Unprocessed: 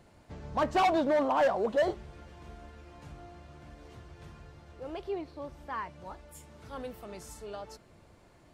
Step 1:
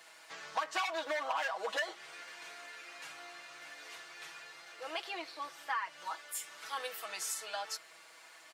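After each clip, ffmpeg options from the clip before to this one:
ffmpeg -i in.wav -af "highpass=1400,aecho=1:1:6.2:0.83,acompressor=threshold=-42dB:ratio=10,volume=10.5dB" out.wav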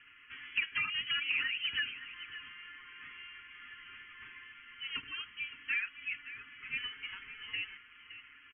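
ffmpeg -i in.wav -af "lowpass=frequency=3000:width_type=q:width=0.5098,lowpass=frequency=3000:width_type=q:width=0.6013,lowpass=frequency=3000:width_type=q:width=0.9,lowpass=frequency=3000:width_type=q:width=2.563,afreqshift=-3500,asuperstop=centerf=660:order=4:qfactor=0.54,aecho=1:1:566:0.211,volume=2dB" out.wav

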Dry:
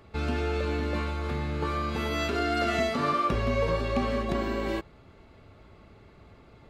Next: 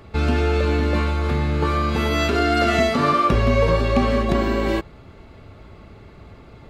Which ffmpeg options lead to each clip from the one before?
ffmpeg -i in.wav -af "lowshelf=frequency=200:gain=3,volume=8dB" out.wav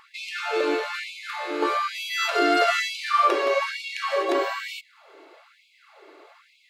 ffmpeg -i in.wav -af "afftfilt=real='re*gte(b*sr/1024,260*pow(2200/260,0.5+0.5*sin(2*PI*1.1*pts/sr)))':imag='im*gte(b*sr/1024,260*pow(2200/260,0.5+0.5*sin(2*PI*1.1*pts/sr)))':win_size=1024:overlap=0.75" out.wav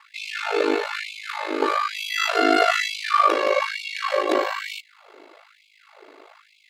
ffmpeg -i in.wav -af "aeval=exprs='val(0)*sin(2*PI*26*n/s)':channel_layout=same,volume=5dB" out.wav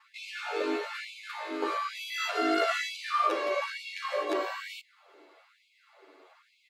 ffmpeg -i in.wav -filter_complex "[0:a]asplit=2[link_01][link_02];[link_02]adelay=9.7,afreqshift=-1.2[link_03];[link_01][link_03]amix=inputs=2:normalize=1,volume=-6dB" out.wav

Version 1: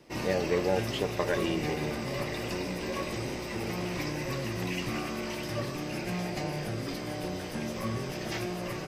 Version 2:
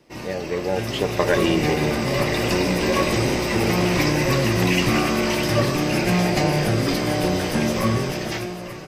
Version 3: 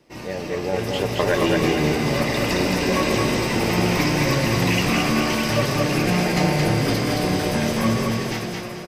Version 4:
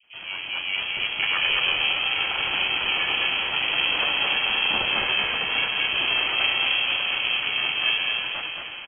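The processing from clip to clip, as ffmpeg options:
ffmpeg -i in.wav -af "dynaudnorm=framelen=150:gausssize=13:maxgain=14dB" out.wav
ffmpeg -i in.wav -af "aecho=1:1:221|442|663|884:0.708|0.234|0.0771|0.0254,volume=-1.5dB" out.wav
ffmpeg -i in.wav -filter_complex "[0:a]acrossover=split=720[link_01][link_02];[link_02]adelay=30[link_03];[link_01][link_03]amix=inputs=2:normalize=0,lowpass=frequency=2600:width_type=q:width=0.5098,lowpass=frequency=2600:width_type=q:width=0.6013,lowpass=frequency=2600:width_type=q:width=0.9,lowpass=frequency=2600:width_type=q:width=2.563,afreqshift=-3100,aeval=exprs='val(0)*sin(2*PI*270*n/s)':channel_layout=same" out.wav

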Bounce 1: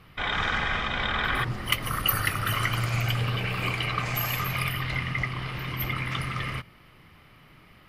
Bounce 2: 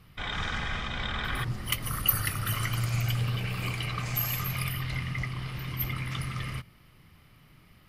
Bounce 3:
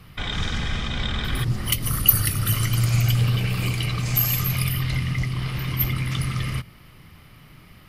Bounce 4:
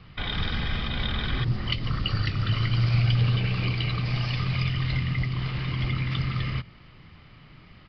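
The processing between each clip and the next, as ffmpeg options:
ffmpeg -i in.wav -af "bass=frequency=250:gain=7,treble=frequency=4000:gain=9,volume=-7.5dB" out.wav
ffmpeg -i in.wav -filter_complex "[0:a]acrossover=split=460|3000[link_01][link_02][link_03];[link_02]acompressor=threshold=-44dB:ratio=6[link_04];[link_01][link_04][link_03]amix=inputs=3:normalize=0,volume=9dB" out.wav
ffmpeg -i in.wav -af "aresample=11025,aresample=44100,volume=-2dB" out.wav

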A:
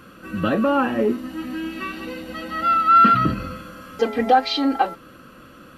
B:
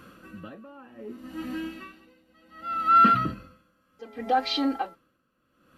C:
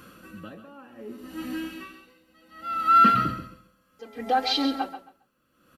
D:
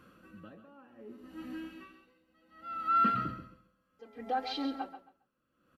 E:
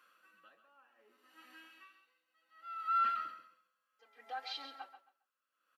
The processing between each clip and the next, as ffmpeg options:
ffmpeg -i in.wav -af "aeval=exprs='val(0)*pow(10,-25*(0.5-0.5*cos(2*PI*0.66*n/s))/20)':channel_layout=same,volume=-4dB" out.wav
ffmpeg -i in.wav -filter_complex "[0:a]highshelf=frequency=4600:gain=8,asplit=2[link_01][link_02];[link_02]aecho=0:1:135|270|405:0.299|0.0627|0.0132[link_03];[link_01][link_03]amix=inputs=2:normalize=0" out.wav
ffmpeg -i in.wav -af "highshelf=frequency=3900:gain=-11,volume=-9dB" out.wav
ffmpeg -i in.wav -af "highpass=1100,volume=-3dB" out.wav

